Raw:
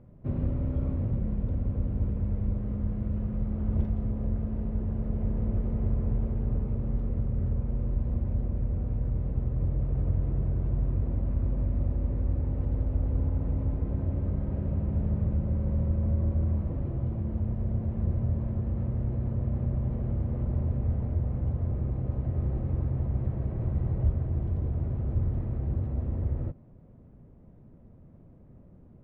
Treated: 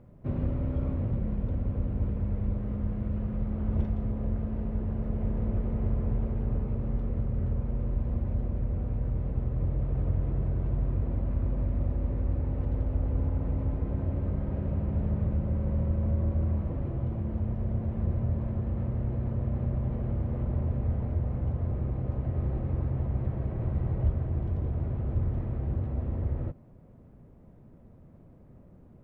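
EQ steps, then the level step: bass shelf 490 Hz -5 dB; +4.0 dB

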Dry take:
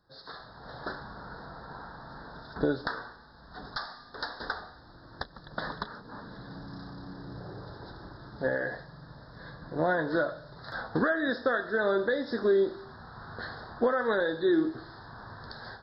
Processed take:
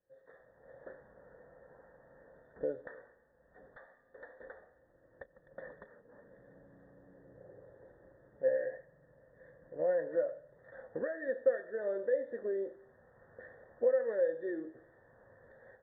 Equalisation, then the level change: cascade formant filter e; distance through air 180 m; dynamic bell 600 Hz, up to +3 dB, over -43 dBFS, Q 1.2; 0.0 dB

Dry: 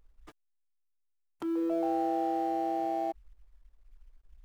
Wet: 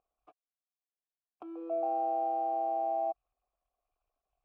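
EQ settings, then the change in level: vowel filter a; tilt shelf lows +5 dB, about 1.2 kHz; +3.5 dB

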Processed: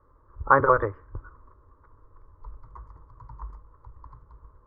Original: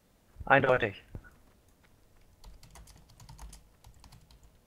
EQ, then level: resonant low-pass 1.1 kHz, resonance Q 6.1; bass shelf 220 Hz +9 dB; static phaser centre 730 Hz, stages 6; +2.5 dB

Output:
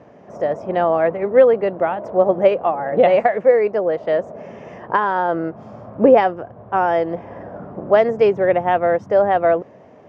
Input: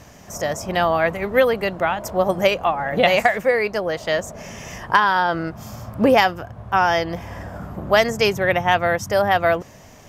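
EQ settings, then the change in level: band-pass 130–2300 Hz; bass shelf 340 Hz +3.5 dB; peaking EQ 470 Hz +12.5 dB 1.9 oct; -7.5 dB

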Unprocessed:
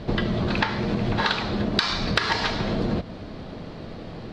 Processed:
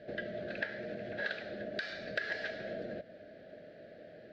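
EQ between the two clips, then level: two resonant band-passes 1 kHz, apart 1.4 oct; peaking EQ 1.1 kHz -15 dB 1.7 oct; +3.5 dB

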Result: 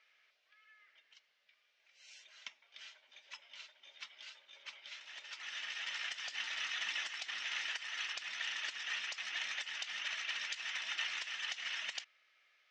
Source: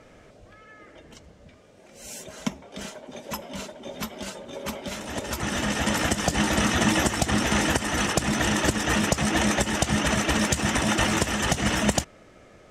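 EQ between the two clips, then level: Butterworth band-pass 3.5 kHz, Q 0.91; distance through air 140 m; -6.5 dB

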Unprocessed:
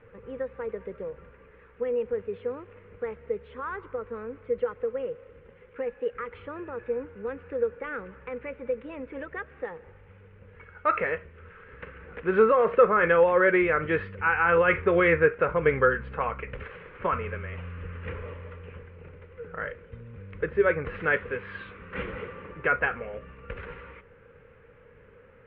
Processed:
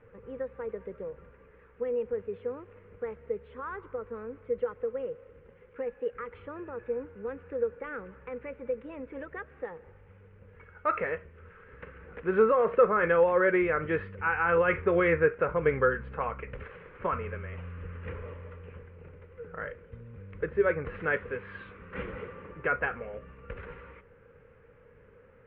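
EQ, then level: treble shelf 2.7 kHz -8 dB; -2.5 dB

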